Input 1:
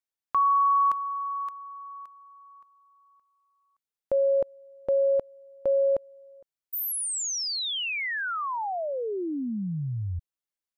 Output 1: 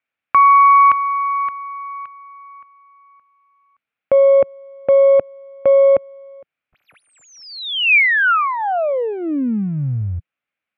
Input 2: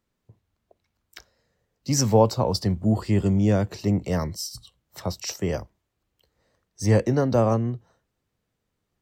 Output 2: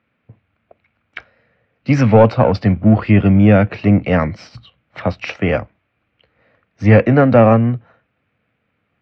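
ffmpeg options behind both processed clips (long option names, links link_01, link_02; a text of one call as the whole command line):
ffmpeg -i in.wav -af "aeval=exprs='if(lt(val(0),0),0.708*val(0),val(0))':channel_layout=same,highpass=110,equalizer=frequency=170:width_type=q:width=4:gain=-4,equalizer=frequency=380:width_type=q:width=4:gain=-9,equalizer=frequency=950:width_type=q:width=4:gain=-6,equalizer=frequency=1400:width_type=q:width=4:gain=4,equalizer=frequency=2400:width_type=q:width=4:gain=8,lowpass=frequency=2800:width=0.5412,lowpass=frequency=2800:width=1.3066,apsyclip=16dB,volume=-1.5dB" out.wav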